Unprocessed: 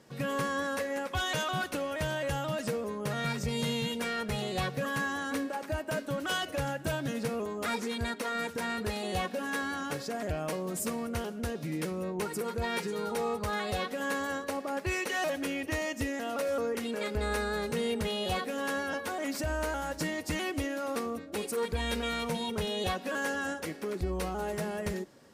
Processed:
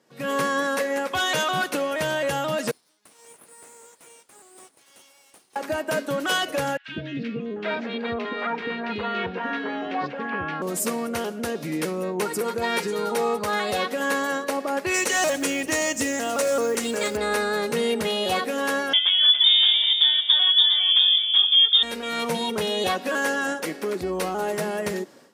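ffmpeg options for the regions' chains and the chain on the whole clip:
-filter_complex "[0:a]asettb=1/sr,asplit=3[a][b][c];[a]atrim=end=2.714[d];[b]atrim=start=2.71:end=5.56,asetpts=PTS-STARTPTS,afade=t=in:d=0.004:c=qsin,afade=t=out:st=2.846:d=0.004:c=qsin,bandpass=f=4.7k:t=q:w=10,aeval=exprs='abs(val(0))':c=same[e];[c]atrim=start=5.556[f];[d][e]acrossfade=d=0.004:c1=hsin:c2=qsin[g];[g][f]acrossfade=d=0.004:c1=qsin:c2=hsin,asettb=1/sr,asplit=3[h][i][j];[h]atrim=end=6.774[k];[i]atrim=start=6.77:end=10.62,asetpts=PTS-STARTPTS,afade=t=in:d=0.004:c=qsin,afade=t=out:st=3.846:d=0.004:c=qsin,lowpass=f=3.2k:w=0.5412,lowpass=f=3.2k:w=1.3066,bandreject=f=570:w=10,acrossover=split=440|1800[l][m][n];[l]adelay=110[o];[m]adelay=790[p];[o][p][n]amix=inputs=3:normalize=0,atrim=end_sample=169785[q];[j]atrim=start=10.616[r];[k][q]acrossfade=d=0.004:c1=hsin:c2=qsin[s];[s][r]acrossfade=d=0.004:c1=qsin:c2=hsin,asettb=1/sr,asplit=3[t][u][v];[t]atrim=end=14.944[w];[u]atrim=start=14.94:end=17.17,asetpts=PTS-STARTPTS,afade=t=in:d=0.004:c=qsin,afade=t=out:st=2.226:d=0.004:c=qsin,equalizer=f=7.3k:t=o:w=0.81:g=11.5,aeval=exprs='val(0)+0.00447*(sin(2*PI*60*n/s)+sin(2*PI*2*60*n/s)/2+sin(2*PI*3*60*n/s)/3+sin(2*PI*4*60*n/s)/4+sin(2*PI*5*60*n/s)/5)':c=same,acrusher=bits=6:mode=log:mix=0:aa=0.000001[x];[v]atrim=start=17.166[y];[w][x]acrossfade=d=0.004:c1=hsin:c2=qsin[z];[z][y]acrossfade=d=0.004:c1=qsin:c2=hsin,asettb=1/sr,asplit=3[aa][ab][ac];[aa]atrim=end=18.934[ad];[ab]atrim=start=18.93:end=21.83,asetpts=PTS-STARTPTS,afade=t=in:d=0.004:c=qsin,afade=t=out:st=2.896:d=0.004:c=qsin,lowshelf=f=640:t=q:w=1.5:g=12,aecho=1:1:403:0.447,atrim=end_sample=127890,lowpass=f=3.1k:t=q:w=0.5098,lowpass=f=3.1k:t=q:w=0.6013,lowpass=f=3.1k:t=q:w=0.9,lowpass=f=3.1k:t=q:w=2.563,afreqshift=-3700[ae];[ac]atrim=start=21.826[af];[ad][ae]acrossfade=d=0.004:c1=hsin:c2=qsin[ag];[ag][af]acrossfade=d=0.004:c1=qsin:c2=hsin,highpass=220,dynaudnorm=f=150:g=3:m=14dB,volume=-5.5dB"

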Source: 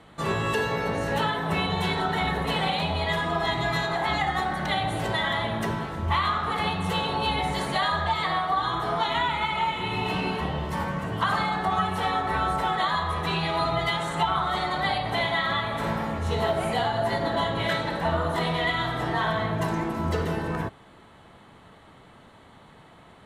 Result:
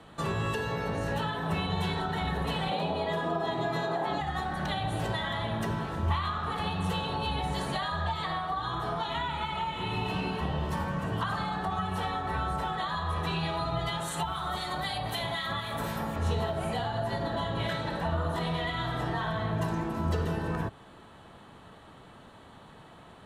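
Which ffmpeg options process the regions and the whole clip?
-filter_complex "[0:a]asettb=1/sr,asplit=3[a][b][c];[a]atrim=end=2.714[d];[b]atrim=start=2.71:end=4.21,asetpts=PTS-STARTPTS,afade=t=in:d=0.004:c=qsin,afade=t=out:st=1.496:d=0.004:c=qsin,highpass=180,equalizer=f=440:w=0.62:g=11[e];[c]atrim=start=4.206[f];[d][e]acrossfade=d=0.004:c1=hsin:c2=qsin[g];[g][f]acrossfade=d=0.004:c1=qsin:c2=hsin,asettb=1/sr,asplit=3[h][i][j];[h]atrim=end=14.004[k];[i]atrim=start=14:end=16.16,asetpts=PTS-STARTPTS,afade=t=in:d=0.004:c=qsin,afade=t=out:st=2.156:d=0.004:c=qsin,aemphasis=mode=production:type=50fm,acrossover=split=1800[l][m];[l]aeval=exprs='val(0)*(1-0.5/2+0.5/2*cos(2*PI*3.9*n/s))':c=same[n];[m]aeval=exprs='val(0)*(1-0.5/2-0.5/2*cos(2*PI*3.9*n/s))':c=same[o];[n][o]amix=inputs=2:normalize=0[p];[j]atrim=start=16.156[q];[k][p]acrossfade=d=0.004:c1=hsin:c2=qsin[r];[r][q]acrossfade=d=0.004:c1=qsin:c2=hsin,bandreject=f=2.1k:w=8.6,acrossover=split=160[s][t];[t]acompressor=threshold=-32dB:ratio=3[u];[s][u]amix=inputs=2:normalize=0"

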